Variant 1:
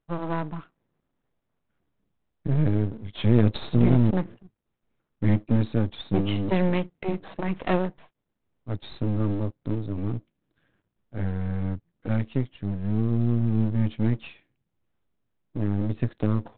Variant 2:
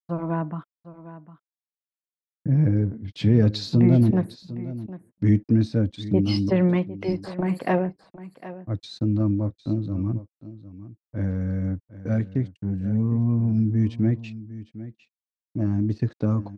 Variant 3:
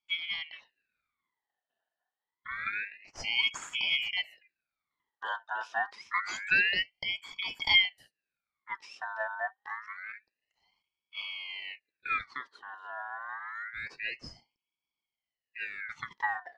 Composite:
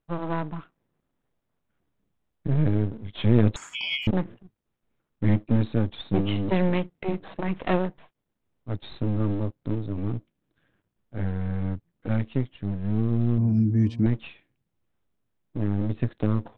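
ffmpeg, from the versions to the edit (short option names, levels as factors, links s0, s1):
-filter_complex "[0:a]asplit=3[s0][s1][s2];[s0]atrim=end=3.562[s3];[2:a]atrim=start=3.558:end=4.072[s4];[s1]atrim=start=4.068:end=13.382[s5];[1:a]atrim=start=13.378:end=14.062[s6];[s2]atrim=start=14.058[s7];[s3][s4]acrossfade=d=0.004:c1=hsin:c2=hsin[s8];[s8][s5]acrossfade=d=0.004:c1=hsin:c2=hsin[s9];[s9][s6]acrossfade=d=0.004:c1=hsin:c2=hsin[s10];[s10][s7]acrossfade=d=0.004:c1=hsin:c2=hsin"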